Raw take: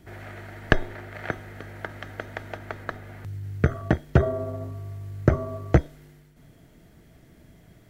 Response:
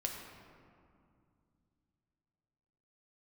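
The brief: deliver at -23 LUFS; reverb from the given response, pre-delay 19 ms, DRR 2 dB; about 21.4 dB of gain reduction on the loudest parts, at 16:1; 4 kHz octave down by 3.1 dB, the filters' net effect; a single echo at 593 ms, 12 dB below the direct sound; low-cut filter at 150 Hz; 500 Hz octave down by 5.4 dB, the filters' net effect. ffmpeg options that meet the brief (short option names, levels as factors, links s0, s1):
-filter_complex "[0:a]highpass=150,equalizer=f=500:t=o:g=-7.5,equalizer=f=4000:t=o:g=-4.5,acompressor=threshold=0.00794:ratio=16,aecho=1:1:593:0.251,asplit=2[s0][s1];[1:a]atrim=start_sample=2205,adelay=19[s2];[s1][s2]afir=irnorm=-1:irlink=0,volume=0.668[s3];[s0][s3]amix=inputs=2:normalize=0,volume=11.2"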